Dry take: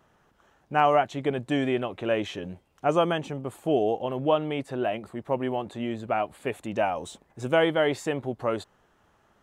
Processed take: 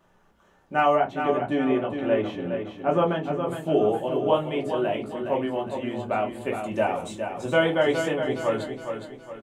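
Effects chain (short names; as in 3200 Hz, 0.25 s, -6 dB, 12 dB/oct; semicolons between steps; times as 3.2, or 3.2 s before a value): 0.95–3.47 bell 7400 Hz -13.5 dB 1.8 oct; feedback echo 0.414 s, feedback 41%, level -7 dB; reverb, pre-delay 3 ms, DRR 0 dB; gain -2.5 dB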